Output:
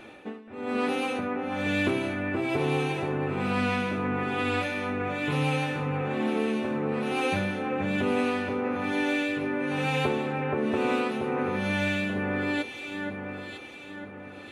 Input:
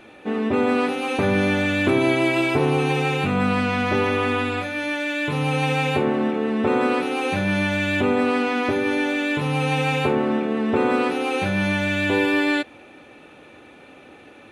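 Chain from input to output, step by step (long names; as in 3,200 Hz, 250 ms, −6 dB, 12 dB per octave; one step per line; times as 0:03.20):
downward compressor, threshold −22 dBFS, peak gain reduction 7.5 dB
amplitude tremolo 1.1 Hz, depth 94%
delay that swaps between a low-pass and a high-pass 476 ms, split 2,100 Hz, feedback 66%, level −3 dB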